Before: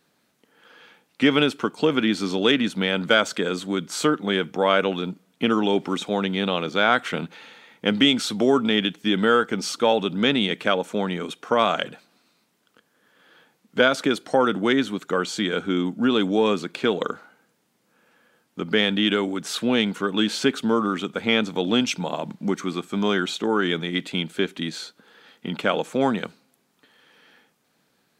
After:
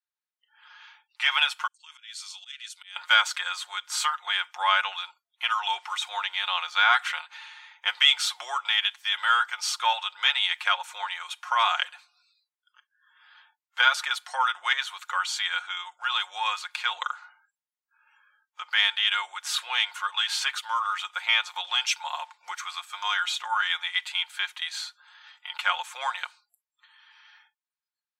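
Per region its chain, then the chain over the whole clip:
1.67–2.96 s: band-pass filter 7.9 kHz, Q 1.1 + slow attack 227 ms
whole clip: spectral noise reduction 30 dB; elliptic high-pass 880 Hz, stop band 70 dB; comb 5.6 ms

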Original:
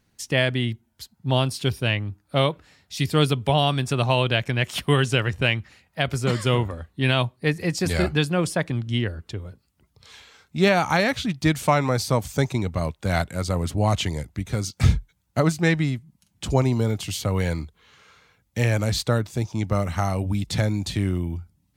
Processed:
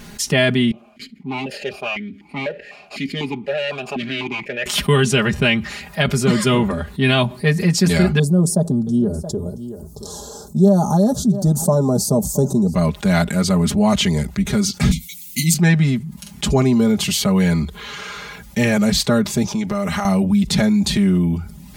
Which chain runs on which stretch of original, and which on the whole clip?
0.71–4.66 s: comb filter that takes the minimum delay 0.42 ms + stepped vowel filter 4 Hz
8.19–12.75 s: Chebyshev band-stop 630–7300 Hz + delay 675 ms -23.5 dB
14.91–15.54 s: brick-wall FIR band-stop 330–2000 Hz + RIAA curve recording + doubling 12 ms -3.5 dB
19.52–20.05 s: high-pass 130 Hz 6 dB/octave + compression, threshold -29 dBFS
whole clip: comb 4.9 ms, depth 91%; dynamic bell 200 Hz, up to +7 dB, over -35 dBFS, Q 1.6; level flattener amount 50%; trim -3 dB

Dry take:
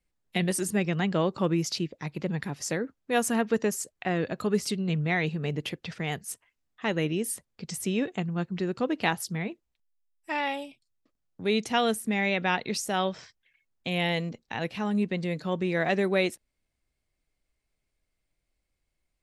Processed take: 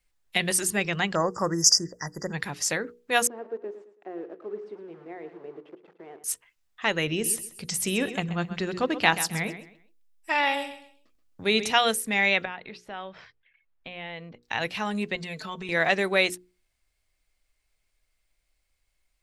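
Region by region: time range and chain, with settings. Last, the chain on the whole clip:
1.15–2.33 s: brick-wall FIR band-stop 2–4.7 kHz + peaking EQ 5.9 kHz +11 dB 1.5 oct
3.27–6.24 s: word length cut 6-bit, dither none + ladder band-pass 400 Hz, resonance 65% + feedback delay 109 ms, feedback 34%, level -12 dB
7.07–11.71 s: bass shelf 420 Hz +4.5 dB + feedback delay 130 ms, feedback 26%, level -12.5 dB
12.45–14.43 s: compression 2.5:1, threshold -39 dBFS + distance through air 370 m
15.15–15.69 s: comb 4.6 ms, depth 75% + compression 2.5:1, threshold -34 dBFS
whole clip: peaking EQ 210 Hz -11.5 dB 3 oct; hum notches 60/120/180/240/300/360/420/480 Hz; trim +7.5 dB

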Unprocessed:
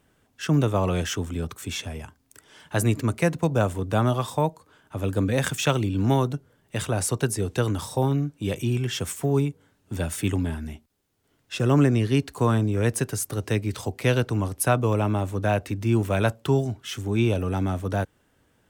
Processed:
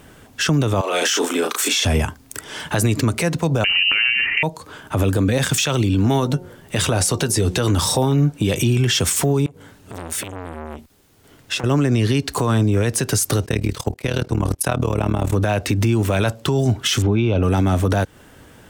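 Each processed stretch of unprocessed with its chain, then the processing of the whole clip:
0.81–1.85 s: Bessel high-pass 470 Hz, order 8 + doubling 35 ms -4.5 dB + compression, threshold -32 dBFS
3.64–4.43 s: de-hum 72.96 Hz, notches 15 + frequency inversion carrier 2.9 kHz + three bands compressed up and down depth 100%
6.04–8.32 s: doubling 12 ms -12 dB + de-hum 180.6 Hz, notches 5
9.46–11.64 s: compression 20:1, threshold -38 dBFS + transformer saturation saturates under 1.9 kHz
13.46–15.33 s: gate -36 dBFS, range -18 dB + AM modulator 38 Hz, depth 85%
17.02–17.43 s: Butterworth band-stop 1.8 kHz, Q 6.8 + distance through air 250 m
whole clip: dynamic bell 4.8 kHz, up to +6 dB, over -45 dBFS, Q 0.85; compression 6:1, threshold -29 dBFS; loudness maximiser +27.5 dB; trim -8.5 dB

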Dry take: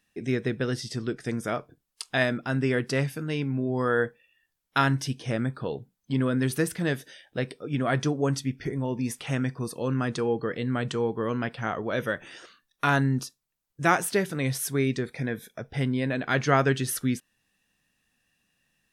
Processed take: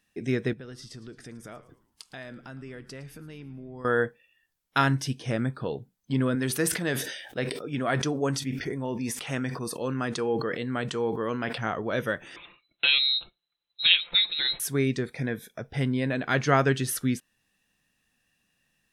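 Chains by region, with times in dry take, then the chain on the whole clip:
0.53–3.85 s: compression 3:1, threshold -44 dBFS + frequency-shifting echo 111 ms, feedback 44%, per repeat -110 Hz, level -17 dB
6.35–11.58 s: bass shelf 180 Hz -9 dB + decay stretcher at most 53 dB/s
12.36–14.60 s: low-pass that closes with the level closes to 2.1 kHz, closed at -20 dBFS + frequency inversion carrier 4 kHz + comb 5.8 ms, depth 45%
whole clip: none

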